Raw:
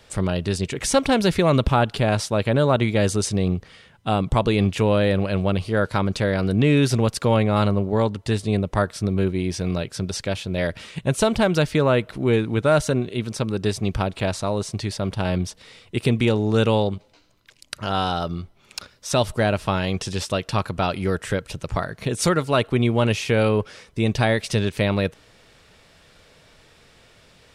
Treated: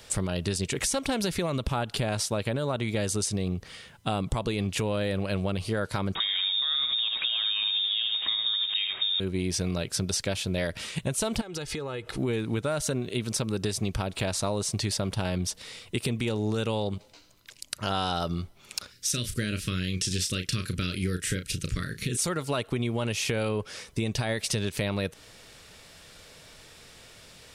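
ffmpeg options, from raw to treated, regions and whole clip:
-filter_complex "[0:a]asettb=1/sr,asplit=3[a][b][c];[a]atrim=end=6.154[d];[b]atrim=start=6.15:end=9.2,asetpts=PTS-STARTPTS,afade=t=in:d=0.004:c=qsin,afade=t=out:st=3.046:d=0.004:c=qsin,aeval=exprs='val(0)+0.5*0.0376*sgn(val(0))':c=same,aecho=1:1:76:0.398,atrim=end_sample=134505,lowpass=f=3.2k:t=q:w=0.5098,lowpass=f=3.2k:t=q:w=0.6013,lowpass=f=3.2k:t=q:w=0.9,lowpass=f=3.2k:t=q:w=2.563,afreqshift=-3800[e];[c]atrim=start=9.196[f];[d][e]acrossfade=d=0.004:c1=hsin:c2=qsin[g];[g][f]acrossfade=d=0.004:c1=qsin:c2=hsin,asettb=1/sr,asplit=3[h][i][j];[h]atrim=end=11.414[k];[i]atrim=start=11.41:end=12.18,asetpts=PTS-STARTPTS,afade=t=in:d=0.004:c=qsin,afade=t=out:st=0.766:d=0.004:c=qsin,lowpass=10k,aecho=1:1:2.4:0.52,atrim=end_sample=33957,acompressor=threshold=-30dB:ratio=20:attack=3.2:release=140:knee=1:detection=peak[l];[j]atrim=start=12.176[m];[k][l]acrossfade=d=0.004:c1=hsin:c2=qsin[n];[n][m]acrossfade=d=0.004:c1=qsin:c2=hsin,asettb=1/sr,asplit=3[o][p][q];[o]atrim=end=18.924[r];[p]atrim=start=18.92:end=22.17,asetpts=PTS-STARTPTS,afade=t=in:d=0.004:c=qsin,afade=t=out:st=3.246:d=0.004:c=qsin,asuperstop=centerf=800:order=4:qfactor=0.62,asplit=2[s][t];[t]adelay=33,volume=-9dB[u];[s][u]amix=inputs=2:normalize=0,atrim=end_sample=143325[v];[q]atrim=start=22.166[w];[r][v]acrossfade=d=0.004:c1=hsin:c2=qsin[x];[x][w]acrossfade=d=0.004:c1=qsin:c2=hsin,highshelf=f=4.6k:g=10.5,alimiter=limit=-13.5dB:level=0:latency=1:release=220,acompressor=threshold=-25dB:ratio=4"

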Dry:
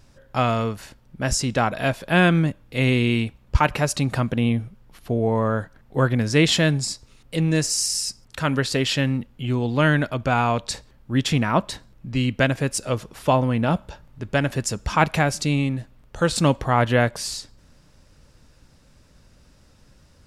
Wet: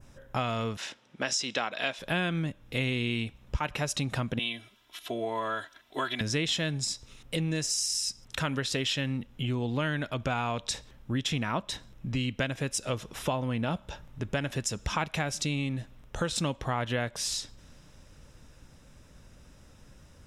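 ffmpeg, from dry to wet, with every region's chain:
-filter_complex "[0:a]asettb=1/sr,asplit=3[a][b][c];[a]atrim=end=0.774[d];[b]atrim=start=0.77:end=1.99,asetpts=PTS-STARTPTS,afade=t=in:d=0.004:c=qsin,afade=t=out:st=1.216:d=0.004:c=qsin,highpass=290,lowpass=4.4k,highshelf=f=2.8k:g=11.5[e];[c]atrim=start=1.986[f];[d][e]acrossfade=d=0.004:c1=hsin:c2=qsin[g];[g][f]acrossfade=d=0.004:c1=qsin:c2=hsin,asettb=1/sr,asplit=3[h][i][j];[h]atrim=end=4.394[k];[i]atrim=start=4.39:end=6.21,asetpts=PTS-STARTPTS,afade=t=in:d=0.004:c=qsin,afade=t=out:st=1.816:d=0.004:c=qsin,highpass=f=1.1k:p=1,equalizer=f=3.5k:t=o:w=0.72:g=8.5,aecho=1:1:3:0.89,atrim=end_sample=80262[l];[j]atrim=start=6.206[m];[k][l]acrossfade=d=0.004:c1=hsin:c2=qsin[n];[n][m]acrossfade=d=0.004:c1=qsin:c2=hsin,bandreject=f=4.5k:w=5.1,adynamicequalizer=threshold=0.00891:dfrequency=4100:dqfactor=0.86:tfrequency=4100:tqfactor=0.86:attack=5:release=100:ratio=0.375:range=4:mode=boostabove:tftype=bell,acompressor=threshold=-29dB:ratio=4"

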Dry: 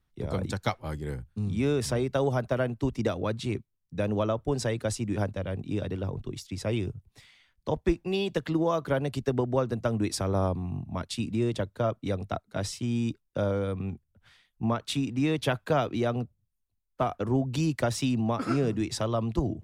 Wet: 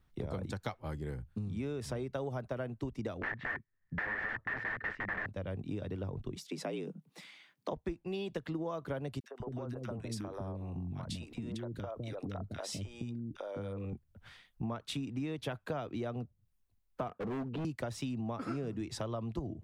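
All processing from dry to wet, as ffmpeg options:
-filter_complex "[0:a]asettb=1/sr,asplit=3[a][b][c];[a]atrim=end=3.224[d];[b]atrim=start=3.22:end=5.26,asetpts=PTS-STARTPTS,afade=t=in:d=0.004:c=qsin,afade=t=out:st=2.036:d=0.004:c=qsin,aeval=exprs='(mod(26.6*val(0)+1,2)-1)/26.6':c=same,lowpass=f=1.8k:t=q:w=15[e];[c]atrim=start=5.256[f];[d][e]acrossfade=d=0.004:c1=hsin:c2=qsin[g];[g][f]acrossfade=d=0.004:c1=qsin:c2=hsin,asettb=1/sr,asplit=3[h][i][j];[h]atrim=end=6.364[k];[i]atrim=start=6.36:end=7.73,asetpts=PTS-STARTPTS,afade=t=in:d=0.004:c=qsin,afade=t=out:st=1.366:d=0.004:c=qsin,highpass=160,afreqshift=59[l];[j]atrim=start=7.726[m];[k][l]acrossfade=d=0.004:c1=hsin:c2=qsin[n];[n][m]acrossfade=d=0.004:c1=qsin:c2=hsin,asettb=1/sr,asplit=3[o][p][q];[o]atrim=end=9.204[r];[p]atrim=start=9.2:end=13.93,asetpts=PTS-STARTPTS,afade=t=in:d=0.004:c=qsin,afade=t=out:st=4.726:d=0.004:c=qsin,acompressor=threshold=-33dB:ratio=10:attack=3.2:release=140:knee=1:detection=peak,acrossover=split=420|1400[s][t][u];[t]adelay=40[v];[s]adelay=200[w];[w][v][u]amix=inputs=3:normalize=0,atrim=end_sample=208593[x];[q]atrim=start=13.926[y];[r][x]acrossfade=d=0.004:c1=hsin:c2=qsin[z];[z][y]acrossfade=d=0.004:c1=qsin:c2=hsin,asettb=1/sr,asplit=3[aa][ab][ac];[aa]atrim=end=17.084[ad];[ab]atrim=start=17.08:end=17.65,asetpts=PTS-STARTPTS,afade=t=in:d=0.004:c=qsin,afade=t=out:st=0.566:d=0.004:c=qsin,highpass=f=110:w=0.5412,highpass=f=110:w=1.3066,equalizer=f=130:t=q:w=4:g=-8,equalizer=f=190:t=q:w=4:g=6,equalizer=f=450:t=q:w=4:g=9,equalizer=f=720:t=q:w=4:g=-9,equalizer=f=2.1k:t=q:w=4:g=-10,lowpass=f=2.8k:w=0.5412,lowpass=f=2.8k:w=1.3066,asoftclip=type=hard:threshold=-31dB[ae];[ac]atrim=start=17.646[af];[ad][ae]acrossfade=d=0.004:c1=hsin:c2=qsin[ag];[ag][af]acrossfade=d=0.004:c1=qsin:c2=hsin,equalizer=f=8.8k:w=0.33:g=-5,acompressor=threshold=-43dB:ratio=4,volume=5dB"

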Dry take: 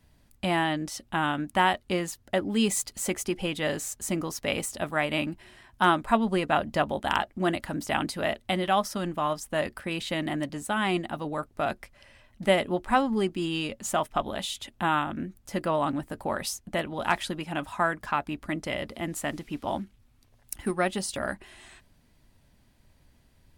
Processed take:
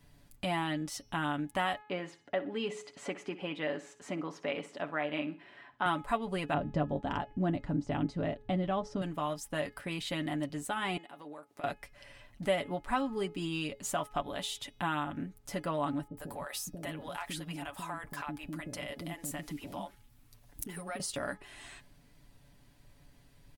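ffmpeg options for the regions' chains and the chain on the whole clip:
-filter_complex "[0:a]asettb=1/sr,asplit=3[a][b][c];[a]atrim=end=1.814[d];[b]atrim=start=1.81:end=5.86,asetpts=PTS-STARTPTS,afade=t=in:d=0.004:c=qsin,afade=t=out:st=4.046:d=0.004:c=qsin,highpass=230,lowpass=2.6k,aecho=1:1:61|122|183:0.158|0.0444|0.0124,atrim=end_sample=178605[e];[c]atrim=start=5.856[f];[d][e]acrossfade=d=0.004:c1=hsin:c2=qsin[g];[g][f]acrossfade=d=0.004:c1=qsin:c2=hsin,asettb=1/sr,asplit=3[h][i][j];[h]atrim=end=6.544[k];[i]atrim=start=6.54:end=9.02,asetpts=PTS-STARTPTS,afade=t=in:d=0.004:c=qsin,afade=t=out:st=2.476:d=0.004:c=qsin,lowpass=f=7.1k:w=0.5412,lowpass=f=7.1k:w=1.3066,tiltshelf=f=660:g=9.5[l];[j]atrim=start=9.016[m];[k][l]acrossfade=d=0.004:c1=hsin:c2=qsin[n];[n][m]acrossfade=d=0.004:c1=qsin:c2=hsin,asettb=1/sr,asplit=3[o][p][q];[o]atrim=end=10.974[r];[p]atrim=start=10.97:end=11.64,asetpts=PTS-STARTPTS,afade=t=in:d=0.004:c=qsin,afade=t=out:st=0.666:d=0.004:c=qsin,highpass=310,acompressor=threshold=-45dB:ratio=4:attack=3.2:release=140:knee=1:detection=peak[s];[q]atrim=start=11.636[t];[r][s]acrossfade=d=0.004:c1=hsin:c2=qsin[u];[u][t]acrossfade=d=0.004:c1=qsin:c2=hsin,asettb=1/sr,asplit=3[v][w][x];[v]atrim=end=16.074[y];[w]atrim=start=16.07:end=21,asetpts=PTS-STARTPTS,afade=t=in:d=0.004:c=qsin,afade=t=out:st=4.926:d=0.004:c=qsin,highshelf=f=9.8k:g=10.5,acompressor=threshold=-32dB:ratio=4:attack=3.2:release=140:knee=1:detection=peak,acrossover=split=440[z][aa];[aa]adelay=100[ab];[z][ab]amix=inputs=2:normalize=0,atrim=end_sample=217413[ac];[x]atrim=start=20.996[ad];[y][ac]acrossfade=d=0.004:c1=hsin:c2=qsin[ae];[ae][ad]acrossfade=d=0.004:c1=qsin:c2=hsin,aecho=1:1:7:0.57,bandreject=f=423:t=h:w=4,bandreject=f=846:t=h:w=4,bandreject=f=1.269k:t=h:w=4,bandreject=f=1.692k:t=h:w=4,bandreject=f=2.115k:t=h:w=4,bandreject=f=2.538k:t=h:w=4,bandreject=f=2.961k:t=h:w=4,bandreject=f=3.384k:t=h:w=4,bandreject=f=3.807k:t=h:w=4,bandreject=f=4.23k:t=h:w=4,bandreject=f=4.653k:t=h:w=4,bandreject=f=5.076k:t=h:w=4,bandreject=f=5.499k:t=h:w=4,bandreject=f=5.922k:t=h:w=4,acompressor=threshold=-44dB:ratio=1.5"

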